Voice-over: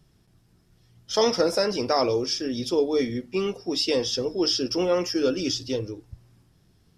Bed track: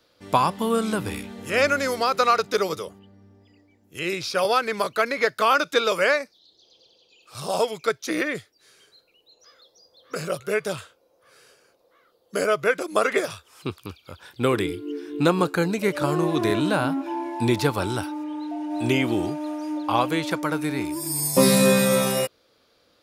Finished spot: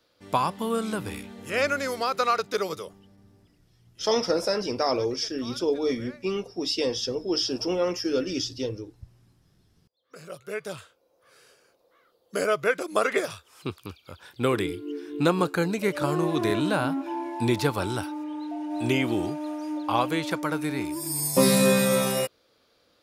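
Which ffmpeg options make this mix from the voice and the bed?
-filter_complex "[0:a]adelay=2900,volume=0.75[s0];[1:a]volume=10,afade=t=out:st=3.34:d=0.37:silence=0.0749894,afade=t=in:st=9.94:d=1.38:silence=0.0595662[s1];[s0][s1]amix=inputs=2:normalize=0"

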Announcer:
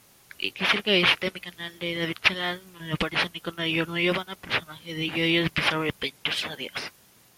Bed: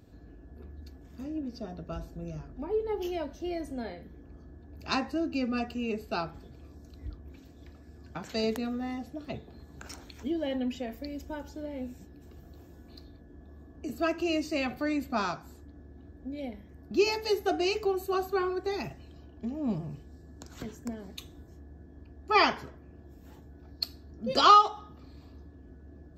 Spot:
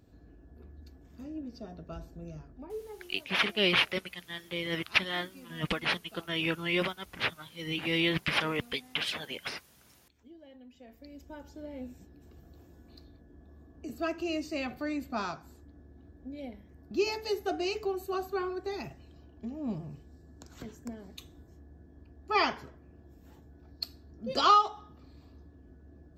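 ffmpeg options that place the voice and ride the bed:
-filter_complex "[0:a]adelay=2700,volume=0.562[s0];[1:a]volume=4.47,afade=t=out:st=2.32:d=0.8:silence=0.141254,afade=t=in:st=10.71:d=1.02:silence=0.133352[s1];[s0][s1]amix=inputs=2:normalize=0"

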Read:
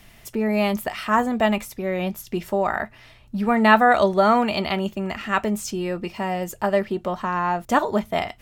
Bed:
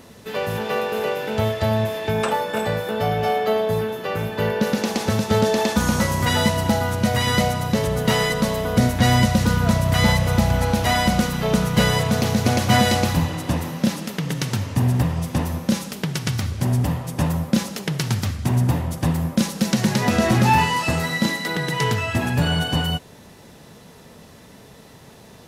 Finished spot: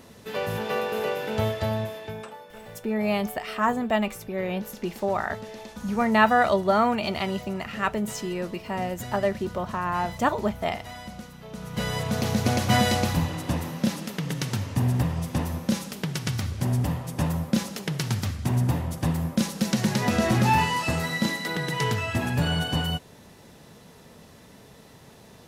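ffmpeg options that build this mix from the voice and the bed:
-filter_complex "[0:a]adelay=2500,volume=0.631[s0];[1:a]volume=4.22,afade=t=out:st=1.44:d=0.87:silence=0.141254,afade=t=in:st=11.53:d=0.82:silence=0.149624[s1];[s0][s1]amix=inputs=2:normalize=0"

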